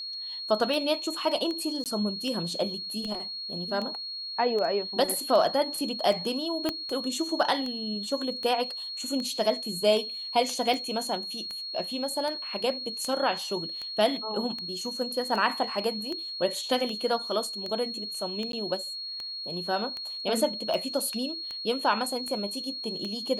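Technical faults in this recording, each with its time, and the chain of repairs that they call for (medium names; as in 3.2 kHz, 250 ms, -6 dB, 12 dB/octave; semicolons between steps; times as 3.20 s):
tick 78 rpm
whine 4.3 kHz -34 dBFS
1.84–1.86 s: dropout 18 ms
6.69 s: pop -13 dBFS
18.52–18.53 s: dropout 12 ms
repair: de-click; band-stop 4.3 kHz, Q 30; interpolate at 1.84 s, 18 ms; interpolate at 18.52 s, 12 ms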